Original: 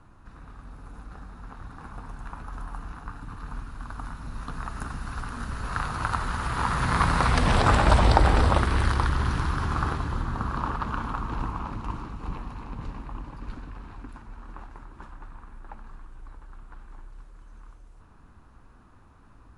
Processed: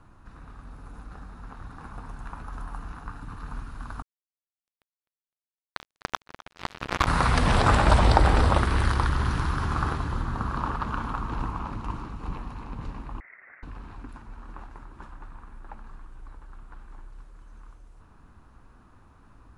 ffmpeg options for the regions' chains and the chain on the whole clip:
ffmpeg -i in.wav -filter_complex "[0:a]asettb=1/sr,asplit=3[link_01][link_02][link_03];[link_01]atrim=end=4.024[link_04];[link_02]atrim=start=4.02:end=7.07,asetpts=PTS-STARTPTS,afade=type=in:duration=0.004:curve=qsin,afade=type=out:start_time=3.046:duration=0.004:curve=qsin,aemphasis=mode=reproduction:type=75kf,acrusher=bits=2:mix=0:aa=0.5,aecho=1:1:255|510|765:0.126|0.0415|0.0137,atrim=end_sample=134505[link_05];[link_03]atrim=start=7.066[link_06];[link_04][link_05]acrossfade=duration=0.004:curve1=hsin:curve2=qsin[link_07];[link_07][link_06]acrossfade=duration=0.004:curve1=qsin:curve2=hsin,asettb=1/sr,asplit=3[link_08][link_09][link_10];[link_08]atrim=end=13.204[link_11];[link_09]atrim=start=13.2:end=13.63,asetpts=PTS-STARTPTS,afade=type=in:duration=0.004:curve=qsin,afade=type=out:start_time=0.426:duration=0.004:curve=qsin,highpass=frequency=830:width=0.5412,highpass=frequency=830:width=1.3066,lowpass=frequency=2600:width_type=q:width=0.5098,lowpass=frequency=2600:width_type=q:width=0.6013,lowpass=frequency=2600:width_type=q:width=0.9,lowpass=frequency=2600:width_type=q:width=2.563,afreqshift=-3000[link_12];[link_10]atrim=start=13.626[link_13];[link_11][link_12]acrossfade=duration=0.004:curve1=hsin:curve2=qsin[link_14];[link_14][link_13]acrossfade=duration=0.004:curve1=qsin:curve2=hsin" out.wav

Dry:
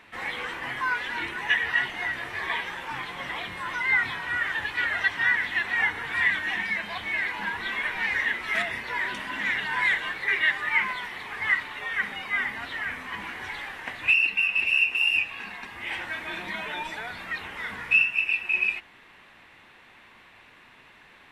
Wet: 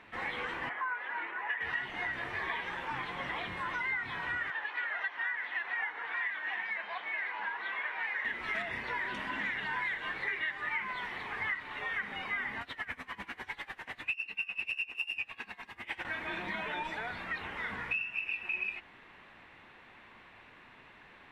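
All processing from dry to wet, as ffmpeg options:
ffmpeg -i in.wav -filter_complex "[0:a]asettb=1/sr,asplit=3[link_01][link_02][link_03];[link_01]atrim=end=0.694[link_04];[link_02]atrim=start=0.69:end=1.61,asetpts=PTS-STARTPTS,afade=type=in:duration=0.004:curve=qsin,afade=type=out:start_time=0.916:duration=0.004:curve=qsin,highpass=280,acrossover=split=510 2300:gain=0.251 1 0.1[link_05][link_06][link_07];[link_05][link_06][link_07]amix=inputs=3:normalize=0[link_08];[link_03]atrim=start=1.606[link_09];[link_04][link_08]acrossfade=duration=0.004:curve1=hsin:curve2=qsin[link_10];[link_10][link_09]acrossfade=duration=0.004:curve1=qsin:curve2=hsin,asettb=1/sr,asplit=3[link_11][link_12][link_13];[link_11]atrim=end=4.504[link_14];[link_12]atrim=start=4.5:end=8.25,asetpts=PTS-STARTPTS,afade=type=in:duration=0.004:curve=qsin,afade=type=out:start_time=3.746:duration=0.004:curve=qsin,highpass=620,lowpass=6600,aemphasis=mode=reproduction:type=75kf[link_15];[link_13]atrim=start=8.246[link_16];[link_14][link_15]acrossfade=duration=0.004:curve1=hsin:curve2=qsin[link_17];[link_17][link_16]acrossfade=duration=0.004:curve1=qsin:curve2=hsin,asettb=1/sr,asplit=3[link_18][link_19][link_20];[link_18]atrim=end=12.614[link_21];[link_19]atrim=start=12.61:end=16.05,asetpts=PTS-STARTPTS,afade=type=in:duration=0.004:curve=qsin,afade=type=out:start_time=3.436:duration=0.004:curve=qsin,highshelf=frequency=4500:gain=10,aeval=exprs='val(0)*pow(10,-22*(0.5-0.5*cos(2*PI*10*n/s))/20)':channel_layout=same[link_22];[link_20]atrim=start=16.046[link_23];[link_21][link_22]acrossfade=duration=0.004:curve1=hsin:curve2=qsin[link_24];[link_24][link_23]acrossfade=duration=0.004:curve1=qsin:curve2=hsin,lowpass=frequency=2300:poles=1,acompressor=threshold=-31dB:ratio=6,volume=-1dB" out.wav

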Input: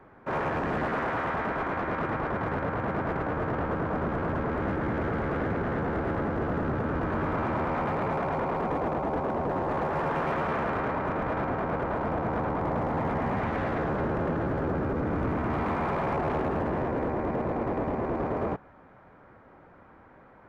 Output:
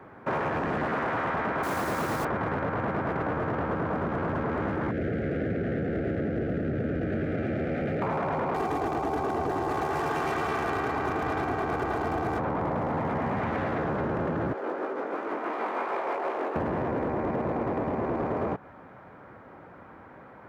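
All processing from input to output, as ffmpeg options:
ffmpeg -i in.wav -filter_complex "[0:a]asettb=1/sr,asplit=3[link_01][link_02][link_03];[link_01]atrim=end=1.634[link_04];[link_02]atrim=start=1.63:end=2.25,asetpts=PTS-STARTPTS,afade=type=in:duration=0.004:curve=qsin,afade=type=out:start_time=0.616:duration=0.004:curve=qsin,acrusher=bits=2:mode=log:mix=0:aa=0.000001,asoftclip=type=hard:threshold=-26.5dB[link_05];[link_03]atrim=start=2.246[link_06];[link_04][link_05]acrossfade=duration=0.004:curve1=hsin:curve2=qsin[link_07];[link_07][link_06]acrossfade=duration=0.004:curve1=qsin:curve2=hsin,asettb=1/sr,asplit=3[link_08][link_09][link_10];[link_08]atrim=end=4.914[link_11];[link_09]atrim=start=4.91:end=8.02,asetpts=PTS-STARTPTS,afade=type=in:duration=0.004:curve=qsin,afade=type=out:start_time=3.106:duration=0.004:curve=qsin,asuperstop=centerf=1000:order=4:qfactor=1,highshelf=frequency=3300:gain=-8[link_12];[link_10]atrim=start=8.016[link_13];[link_11][link_12]acrossfade=duration=0.004:curve1=hsin:curve2=qsin[link_14];[link_14][link_13]acrossfade=duration=0.004:curve1=qsin:curve2=hsin,asettb=1/sr,asplit=3[link_15][link_16][link_17];[link_15]atrim=end=8.544[link_18];[link_16]atrim=start=8.54:end=12.39,asetpts=PTS-STARTPTS,afade=type=in:duration=0.004:curve=qsin,afade=type=out:start_time=3.846:duration=0.004:curve=qsin,bass=frequency=250:gain=1,treble=frequency=4000:gain=15,bandreject=frequency=510:width=11,aecho=1:1:2.6:0.52,atrim=end_sample=169785[link_19];[link_17]atrim=start=12.386[link_20];[link_18][link_19]acrossfade=duration=0.004:curve1=hsin:curve2=qsin[link_21];[link_21][link_20]acrossfade=duration=0.004:curve1=qsin:curve2=hsin,asettb=1/sr,asplit=3[link_22][link_23][link_24];[link_22]atrim=end=14.534[link_25];[link_23]atrim=start=14.53:end=16.56,asetpts=PTS-STARTPTS,afade=type=in:duration=0.004:curve=qsin,afade=type=out:start_time=2.026:duration=0.004:curve=qsin,highpass=frequency=340:width=0.5412,highpass=frequency=340:width=1.3066,flanger=delay=17.5:depth=4.3:speed=2.8,tremolo=f=6.3:d=0.39[link_26];[link_24]atrim=start=16.556[link_27];[link_25][link_26]acrossfade=duration=0.004:curve1=hsin:curve2=qsin[link_28];[link_28][link_27]acrossfade=duration=0.004:curve1=qsin:curve2=hsin,highpass=76,acompressor=threshold=-31dB:ratio=6,volume=5.5dB" out.wav

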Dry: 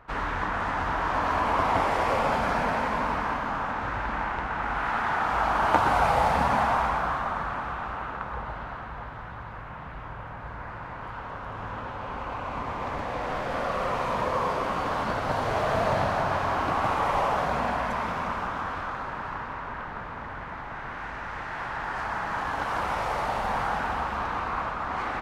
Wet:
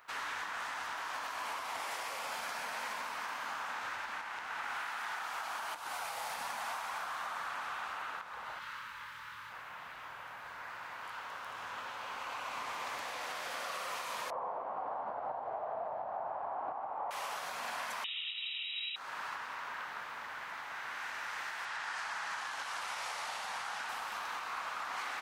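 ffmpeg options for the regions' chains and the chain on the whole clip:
ffmpeg -i in.wav -filter_complex "[0:a]asettb=1/sr,asplit=3[link_01][link_02][link_03];[link_01]atrim=end=8.594[link_04];[link_02]atrim=start=8.59:end=9.5,asetpts=PTS-STARTPTS,afade=type=in:duration=0.004:curve=qsin,afade=type=out:start_time=0.906:duration=0.004:curve=qsin,asuperstop=centerf=720:order=12:qfactor=3.5,equalizer=frequency=440:width_type=o:width=1.8:gain=-11,asplit=2[link_05][link_06];[link_06]adelay=27,volume=-2dB[link_07];[link_05][link_07]amix=inputs=2:normalize=0,atrim=end_sample=40131[link_08];[link_03]atrim=start=9.496[link_09];[link_04][link_08]acrossfade=duration=0.004:curve1=hsin:curve2=qsin[link_10];[link_10][link_09]acrossfade=duration=0.004:curve1=qsin:curve2=hsin,asettb=1/sr,asplit=3[link_11][link_12][link_13];[link_11]atrim=end=14.304[link_14];[link_12]atrim=start=14.3:end=17.11,asetpts=PTS-STARTPTS,afade=type=in:duration=0.004:curve=qsin,afade=type=out:start_time=2.806:duration=0.004:curve=qsin,lowpass=frequency=770:width_type=q:width=3.1,aemphasis=mode=reproduction:type=50fm[link_15];[link_13]atrim=start=17.106[link_16];[link_14][link_15]acrossfade=duration=0.004:curve1=hsin:curve2=qsin[link_17];[link_17][link_16]acrossfade=duration=0.004:curve1=qsin:curve2=hsin,asettb=1/sr,asplit=3[link_18][link_19][link_20];[link_18]atrim=end=18.044[link_21];[link_19]atrim=start=18.04:end=18.96,asetpts=PTS-STARTPTS,afade=type=in:duration=0.004:curve=qsin,afade=type=out:start_time=0.916:duration=0.004:curve=qsin,asubboost=boost=9:cutoff=100,lowpass=frequency=3300:width_type=q:width=0.5098,lowpass=frequency=3300:width_type=q:width=0.6013,lowpass=frequency=3300:width_type=q:width=0.9,lowpass=frequency=3300:width_type=q:width=2.563,afreqshift=-3900,asuperstop=centerf=1600:order=20:qfactor=6.3[link_22];[link_20]atrim=start=18.956[link_23];[link_21][link_22]acrossfade=duration=0.004:curve1=hsin:curve2=qsin[link_24];[link_24][link_23]acrossfade=duration=0.004:curve1=qsin:curve2=hsin,asettb=1/sr,asplit=3[link_25][link_26][link_27];[link_25]atrim=end=21.654[link_28];[link_26]atrim=start=21.65:end=23.89,asetpts=PTS-STARTPTS,afade=type=in:duration=0.004:curve=qsin,afade=type=out:start_time=2.236:duration=0.004:curve=qsin,lowpass=8300,equalizer=frequency=380:width_type=o:width=2.1:gain=-3.5[link_29];[link_27]atrim=start=23.886[link_30];[link_28][link_29]acrossfade=duration=0.004:curve1=hsin:curve2=qsin[link_31];[link_31][link_30]acrossfade=duration=0.004:curve1=qsin:curve2=hsin,aderivative,acompressor=threshold=-43dB:ratio=6,alimiter=level_in=15dB:limit=-24dB:level=0:latency=1:release=304,volume=-15dB,volume=9.5dB" out.wav

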